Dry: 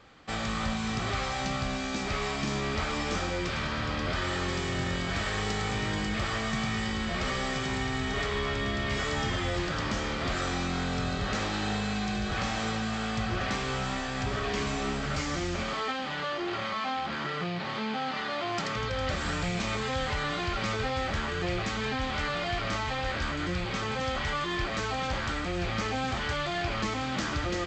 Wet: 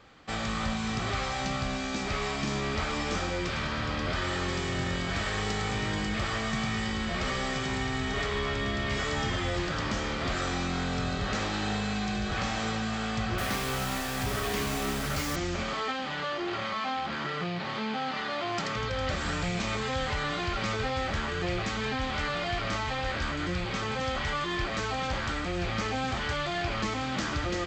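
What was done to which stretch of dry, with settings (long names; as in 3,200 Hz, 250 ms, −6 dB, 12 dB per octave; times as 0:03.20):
0:13.38–0:15.36: bit-depth reduction 6 bits, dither none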